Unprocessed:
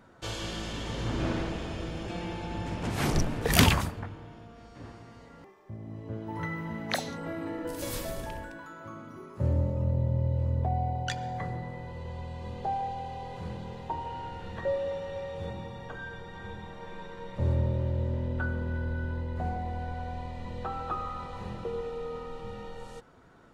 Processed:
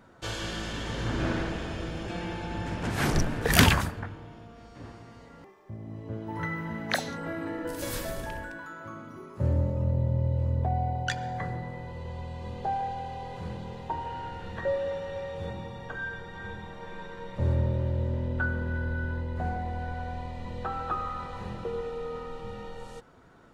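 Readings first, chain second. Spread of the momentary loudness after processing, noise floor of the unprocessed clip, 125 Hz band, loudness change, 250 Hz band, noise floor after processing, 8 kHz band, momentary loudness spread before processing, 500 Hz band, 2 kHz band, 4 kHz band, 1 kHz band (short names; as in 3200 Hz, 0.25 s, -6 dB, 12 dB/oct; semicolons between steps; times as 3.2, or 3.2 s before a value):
15 LU, -51 dBFS, +1.0 dB, +1.5 dB, +1.0 dB, -50 dBFS, +1.0 dB, 15 LU, +1.0 dB, +4.5 dB, +1.0 dB, +1.5 dB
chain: dynamic EQ 1600 Hz, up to +6 dB, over -54 dBFS, Q 3.3; gain +1 dB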